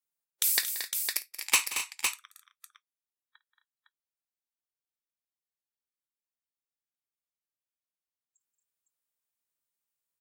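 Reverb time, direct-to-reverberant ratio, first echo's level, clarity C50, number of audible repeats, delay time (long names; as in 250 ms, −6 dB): no reverb audible, no reverb audible, −18.0 dB, no reverb audible, 5, 53 ms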